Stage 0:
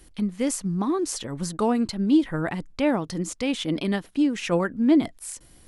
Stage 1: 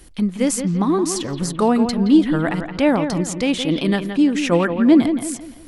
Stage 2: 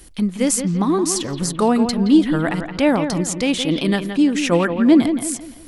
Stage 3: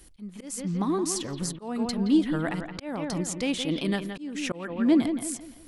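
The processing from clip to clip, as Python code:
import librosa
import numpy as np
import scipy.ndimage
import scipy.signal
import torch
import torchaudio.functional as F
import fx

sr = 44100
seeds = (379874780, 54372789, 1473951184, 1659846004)

y1 = fx.echo_bbd(x, sr, ms=170, stages=4096, feedback_pct=38, wet_db=-8.5)
y1 = y1 * librosa.db_to_amplitude(6.0)
y2 = fx.high_shelf(y1, sr, hz=4200.0, db=5.0)
y3 = fx.auto_swell(y2, sr, attack_ms=309.0)
y3 = y3 * librosa.db_to_amplitude(-8.5)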